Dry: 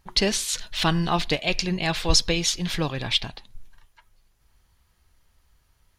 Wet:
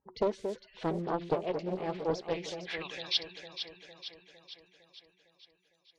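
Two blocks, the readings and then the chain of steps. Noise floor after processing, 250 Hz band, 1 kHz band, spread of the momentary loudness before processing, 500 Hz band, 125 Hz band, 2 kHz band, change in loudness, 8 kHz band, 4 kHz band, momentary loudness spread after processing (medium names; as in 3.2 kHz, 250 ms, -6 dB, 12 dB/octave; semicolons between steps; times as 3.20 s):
-73 dBFS, -10.0 dB, -8.5 dB, 6 LU, -3.0 dB, -14.5 dB, -14.0 dB, -11.5 dB, -25.5 dB, -12.5 dB, 16 LU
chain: vibrato 2.3 Hz 29 cents; spectral gate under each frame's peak -25 dB strong; band-pass sweep 450 Hz -> 6.4 kHz, 2.10–3.25 s; on a send: echo whose repeats swap between lows and highs 228 ms, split 2 kHz, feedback 75%, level -7 dB; on the sum: loudspeaker Doppler distortion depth 0.49 ms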